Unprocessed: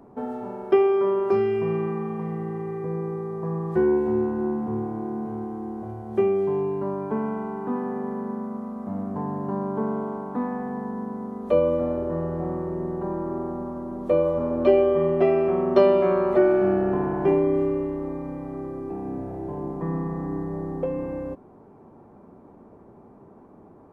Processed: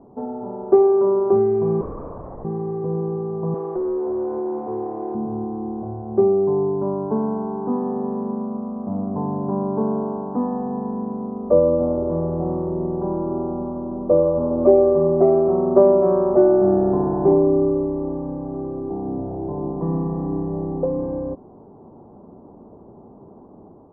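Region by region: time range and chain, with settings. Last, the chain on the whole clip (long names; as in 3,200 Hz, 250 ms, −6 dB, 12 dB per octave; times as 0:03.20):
0:01.81–0:02.45: high-pass filter 560 Hz + linear-prediction vocoder at 8 kHz whisper
0:03.54–0:05.15: linear delta modulator 16 kbit/s, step −38 dBFS + low shelf with overshoot 290 Hz −12 dB, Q 1.5 + downward compressor, threshold −26 dBFS
whole clip: low-pass filter 1,000 Hz 24 dB per octave; automatic gain control gain up to 3 dB; level +2 dB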